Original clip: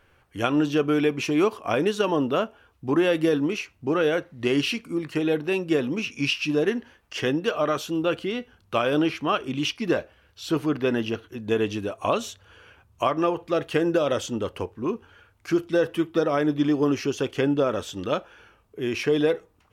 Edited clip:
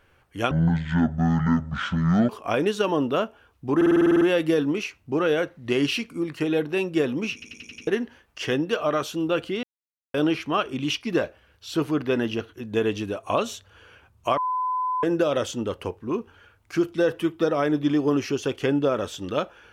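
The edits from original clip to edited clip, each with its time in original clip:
0:00.51–0:01.49: play speed 55%
0:02.96: stutter 0.05 s, 10 plays
0:06.08: stutter in place 0.09 s, 6 plays
0:08.38–0:08.89: silence
0:13.12–0:13.78: beep over 1,010 Hz −22.5 dBFS

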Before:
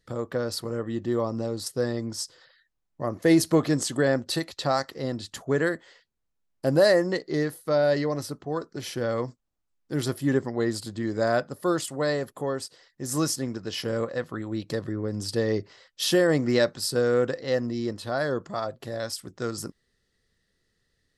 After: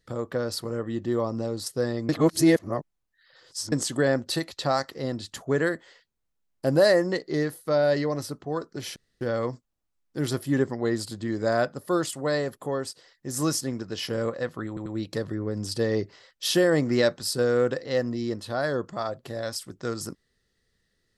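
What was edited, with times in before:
0:02.09–0:03.72: reverse
0:08.96: splice in room tone 0.25 s
0:14.43: stutter 0.09 s, 3 plays

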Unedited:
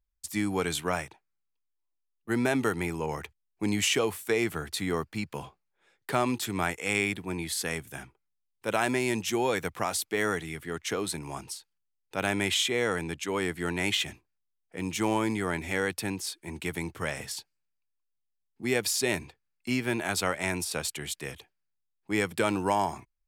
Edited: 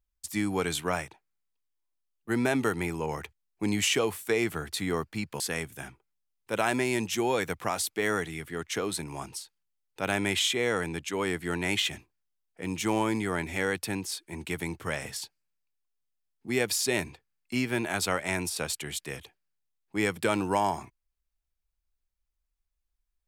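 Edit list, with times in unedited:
0:05.40–0:07.55: remove

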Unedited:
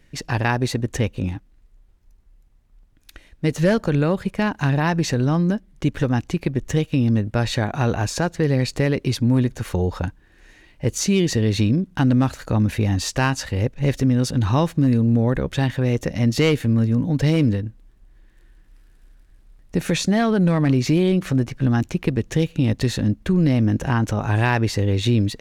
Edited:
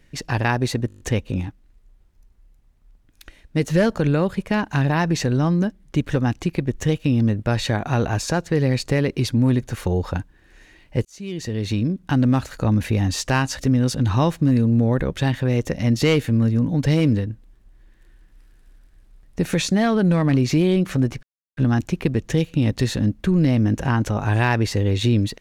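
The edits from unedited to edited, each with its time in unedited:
0:00.88: stutter 0.02 s, 7 plays
0:10.93–0:12.48: fade in equal-power
0:13.47–0:13.95: remove
0:21.59: splice in silence 0.34 s

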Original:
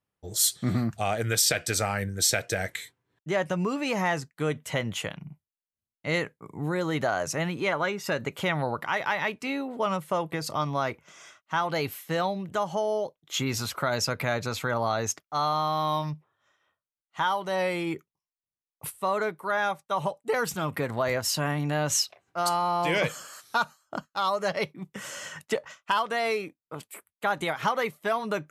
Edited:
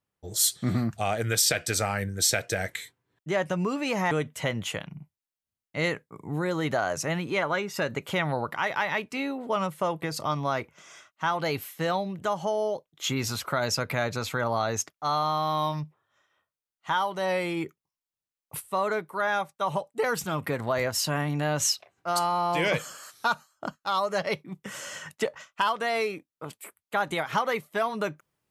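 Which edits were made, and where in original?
0:04.11–0:04.41: remove

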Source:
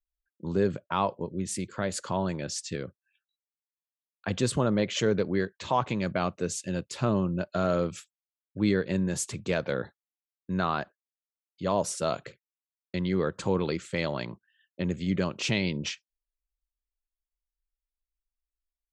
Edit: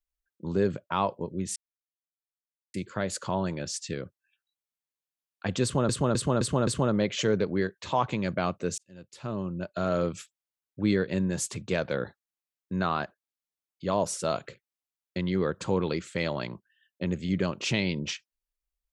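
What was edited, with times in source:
0:01.56: splice in silence 1.18 s
0:04.45–0:04.71: repeat, 5 plays
0:06.56–0:07.84: fade in

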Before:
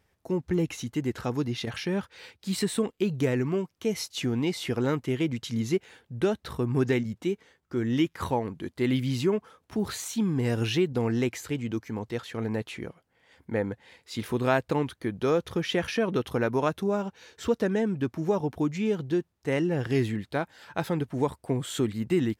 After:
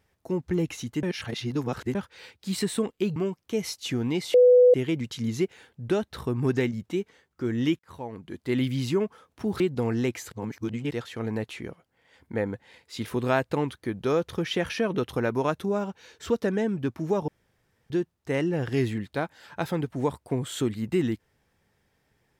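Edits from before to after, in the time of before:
0:01.03–0:01.95: reverse
0:03.16–0:03.48: remove
0:04.66–0:05.06: beep over 496 Hz −12 dBFS
0:08.11–0:08.85: fade in
0:09.92–0:10.78: remove
0:11.50–0:12.09: reverse
0:18.46–0:19.08: fill with room tone

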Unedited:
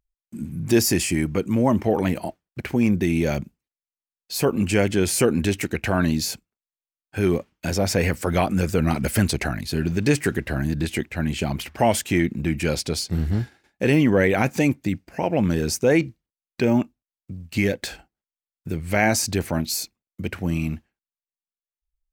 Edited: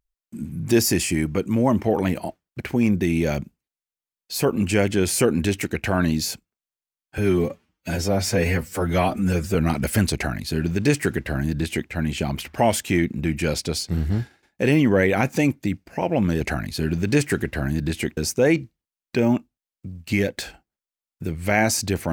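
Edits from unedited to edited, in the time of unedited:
0:07.18–0:08.76: time-stretch 1.5×
0:09.35–0:11.11: duplicate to 0:15.62

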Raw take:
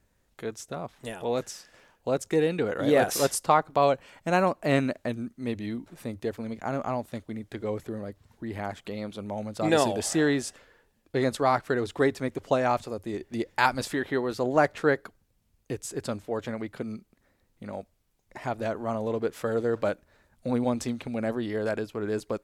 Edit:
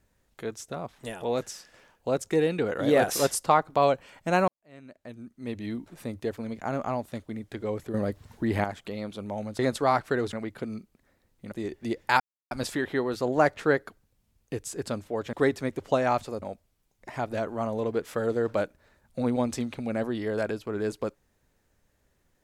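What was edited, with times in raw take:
0:04.48–0:05.72: fade in quadratic
0:07.94–0:08.64: clip gain +8.5 dB
0:09.59–0:11.18: remove
0:11.92–0:13.01: swap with 0:16.51–0:17.70
0:13.69: splice in silence 0.31 s

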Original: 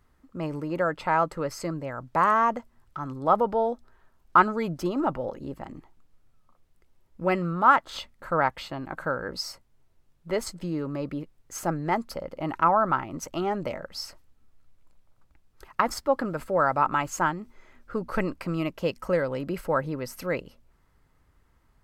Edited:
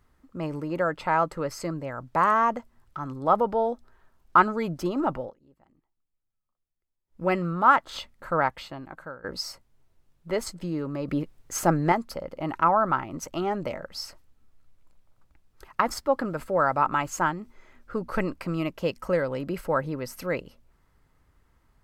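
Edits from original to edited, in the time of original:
0:05.18–0:07.23: duck −23.5 dB, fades 0.16 s
0:08.39–0:09.24: fade out, to −17 dB
0:11.08–0:11.92: clip gain +6 dB

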